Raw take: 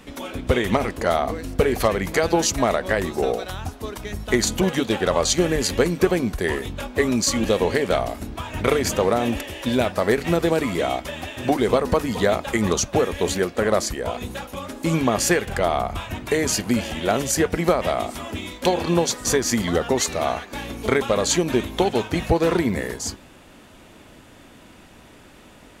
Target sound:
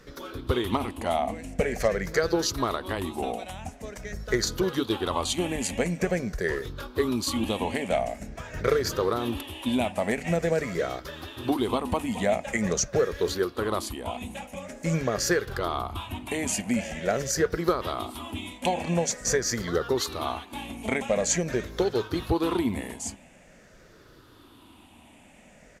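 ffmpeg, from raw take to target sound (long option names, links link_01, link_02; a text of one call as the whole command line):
ffmpeg -i in.wav -af "afftfilt=real='re*pow(10,11/40*sin(2*PI*(0.57*log(max(b,1)*sr/1024/100)/log(2)-(-0.46)*(pts-256)/sr)))':imag='im*pow(10,11/40*sin(2*PI*(0.57*log(max(b,1)*sr/1024/100)/log(2)-(-0.46)*(pts-256)/sr)))':win_size=1024:overlap=0.75,aresample=32000,aresample=44100,volume=-7.5dB" out.wav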